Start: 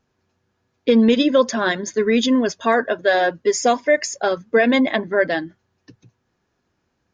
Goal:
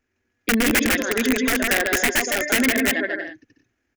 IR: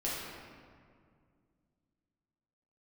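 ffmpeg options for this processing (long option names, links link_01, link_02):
-af "equalizer=frequency=180:width_type=o:width=0.71:gain=-11,aecho=1:1:270|432|529.2|587.5|622.5:0.631|0.398|0.251|0.158|0.1,atempo=1.8,aeval=exprs='(mod(3.35*val(0)+1,2)-1)/3.35':channel_layout=same,equalizer=frequency=125:width_type=o:width=1:gain=-11,equalizer=frequency=250:width_type=o:width=1:gain=5,equalizer=frequency=500:width_type=o:width=1:gain=-5,equalizer=frequency=1000:width_type=o:width=1:gain=-12,equalizer=frequency=2000:width_type=o:width=1:gain=8,equalizer=frequency=4000:width_type=o:width=1:gain=-9"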